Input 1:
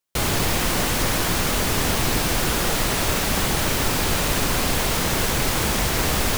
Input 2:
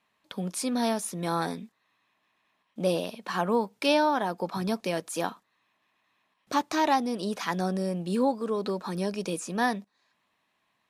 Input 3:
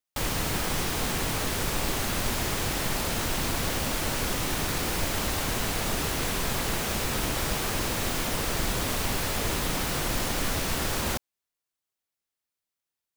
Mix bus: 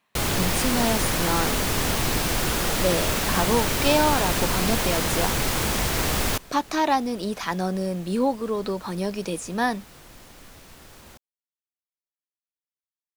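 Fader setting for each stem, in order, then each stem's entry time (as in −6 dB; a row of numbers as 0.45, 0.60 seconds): −2.5, +2.5, −19.0 decibels; 0.00, 0.00, 0.00 seconds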